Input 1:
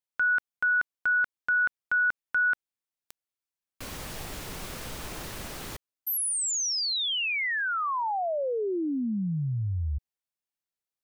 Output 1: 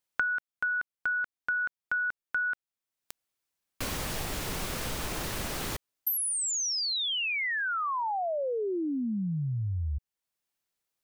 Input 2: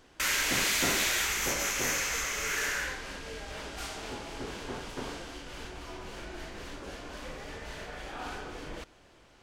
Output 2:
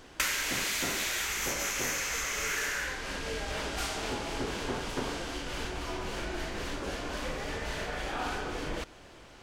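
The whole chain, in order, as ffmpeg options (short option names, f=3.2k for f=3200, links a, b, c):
-af "acompressor=threshold=-37dB:ratio=6:attack=64:release=635:detection=rms,volume=7dB"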